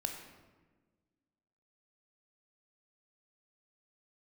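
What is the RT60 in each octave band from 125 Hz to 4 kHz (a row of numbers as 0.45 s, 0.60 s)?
1.7 s, 2.0 s, 1.5 s, 1.2 s, 1.1 s, 0.80 s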